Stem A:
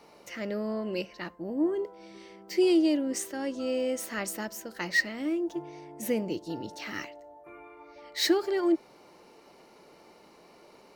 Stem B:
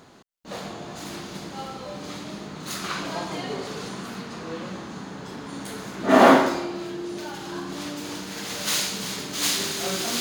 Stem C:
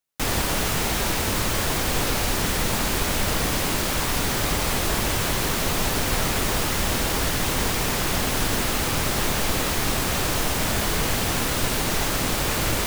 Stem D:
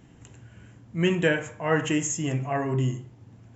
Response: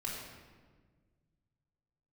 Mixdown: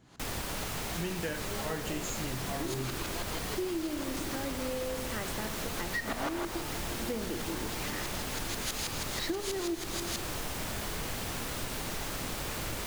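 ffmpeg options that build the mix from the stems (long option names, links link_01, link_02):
-filter_complex "[0:a]highshelf=frequency=3700:gain=-11,adelay=1000,volume=-2.5dB,asplit=2[link_01][link_02];[link_02]volume=-8.5dB[link_03];[1:a]equalizer=frequency=11000:width=0.49:gain=10,asplit=2[link_04][link_05];[link_05]highpass=frequency=720:poles=1,volume=19dB,asoftclip=type=tanh:threshold=-1dB[link_06];[link_04][link_06]amix=inputs=2:normalize=0,lowpass=frequency=4500:poles=1,volume=-6dB,aeval=exprs='val(0)*pow(10,-19*if(lt(mod(-6.2*n/s,1),2*abs(-6.2)/1000),1-mod(-6.2*n/s,1)/(2*abs(-6.2)/1000),(mod(-6.2*n/s,1)-2*abs(-6.2)/1000)/(1-2*abs(-6.2)/1000))/20)':channel_layout=same,volume=-14dB[link_07];[2:a]volume=-11.5dB[link_08];[3:a]volume=-8.5dB,asplit=2[link_09][link_10];[link_10]apad=whole_len=527046[link_11];[link_01][link_11]sidechaincompress=threshold=-45dB:ratio=8:attack=16:release=1490[link_12];[4:a]atrim=start_sample=2205[link_13];[link_03][link_13]afir=irnorm=-1:irlink=0[link_14];[link_12][link_07][link_08][link_09][link_14]amix=inputs=5:normalize=0,acompressor=threshold=-31dB:ratio=6"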